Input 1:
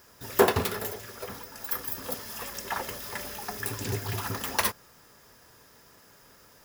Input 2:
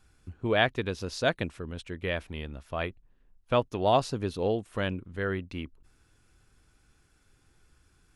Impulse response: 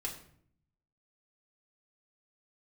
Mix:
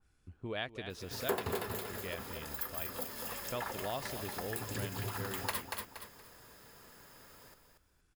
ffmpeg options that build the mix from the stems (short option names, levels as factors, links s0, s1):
-filter_complex "[0:a]bandreject=f=5800:w=5.8,adelay=900,volume=0.841,asplit=2[s0][s1];[s1]volume=0.447[s2];[1:a]adynamicequalizer=threshold=0.00794:dfrequency=2200:dqfactor=0.7:tfrequency=2200:tqfactor=0.7:attack=5:release=100:ratio=0.375:range=3:mode=boostabove:tftype=highshelf,volume=0.355,asplit=2[s3][s4];[s4]volume=0.2[s5];[s2][s5]amix=inputs=2:normalize=0,aecho=0:1:235|470|705:1|0.21|0.0441[s6];[s0][s3][s6]amix=inputs=3:normalize=0,acompressor=threshold=0.01:ratio=2"